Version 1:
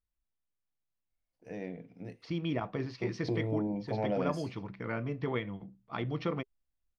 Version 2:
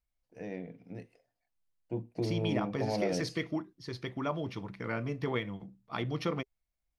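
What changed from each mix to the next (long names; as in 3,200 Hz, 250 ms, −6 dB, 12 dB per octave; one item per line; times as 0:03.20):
first voice: entry −1.10 s
second voice: remove high-frequency loss of the air 190 metres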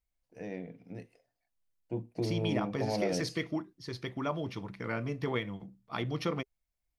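master: add high-shelf EQ 6,600 Hz +4.5 dB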